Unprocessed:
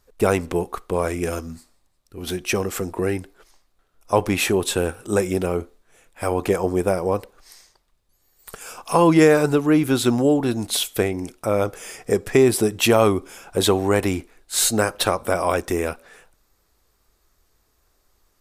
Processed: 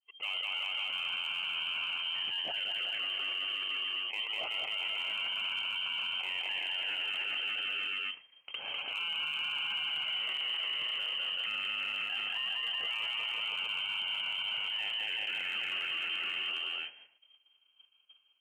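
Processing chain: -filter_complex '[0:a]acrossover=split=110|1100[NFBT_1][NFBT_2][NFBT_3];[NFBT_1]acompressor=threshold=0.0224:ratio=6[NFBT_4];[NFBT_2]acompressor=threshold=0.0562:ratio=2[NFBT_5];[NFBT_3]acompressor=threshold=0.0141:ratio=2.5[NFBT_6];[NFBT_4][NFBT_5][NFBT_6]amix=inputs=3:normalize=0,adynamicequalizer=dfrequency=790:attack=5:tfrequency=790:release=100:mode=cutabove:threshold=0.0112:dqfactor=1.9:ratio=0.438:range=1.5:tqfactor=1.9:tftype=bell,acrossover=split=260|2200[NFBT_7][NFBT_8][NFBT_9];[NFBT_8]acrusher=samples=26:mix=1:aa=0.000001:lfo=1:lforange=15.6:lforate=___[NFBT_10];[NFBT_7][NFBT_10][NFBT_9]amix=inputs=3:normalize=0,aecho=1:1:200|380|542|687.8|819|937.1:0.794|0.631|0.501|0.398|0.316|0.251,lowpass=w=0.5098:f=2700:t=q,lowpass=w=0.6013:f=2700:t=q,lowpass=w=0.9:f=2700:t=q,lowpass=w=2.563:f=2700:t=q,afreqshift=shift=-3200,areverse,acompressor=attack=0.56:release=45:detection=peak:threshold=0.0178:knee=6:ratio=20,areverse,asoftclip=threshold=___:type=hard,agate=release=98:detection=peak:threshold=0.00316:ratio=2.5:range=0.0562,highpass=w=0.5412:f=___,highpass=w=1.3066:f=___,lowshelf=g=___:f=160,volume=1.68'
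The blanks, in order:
0.24, 0.0237, 76, 76, -4.5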